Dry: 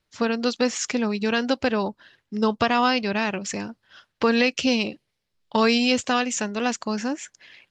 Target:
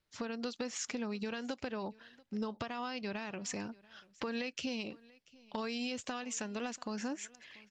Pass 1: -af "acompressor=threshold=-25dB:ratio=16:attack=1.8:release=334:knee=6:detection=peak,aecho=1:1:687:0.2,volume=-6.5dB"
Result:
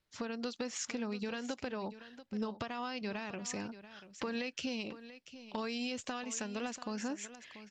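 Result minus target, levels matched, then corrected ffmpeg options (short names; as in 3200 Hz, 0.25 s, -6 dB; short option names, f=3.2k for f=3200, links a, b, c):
echo-to-direct +9.5 dB
-af "acompressor=threshold=-25dB:ratio=16:attack=1.8:release=334:knee=6:detection=peak,aecho=1:1:687:0.0668,volume=-6.5dB"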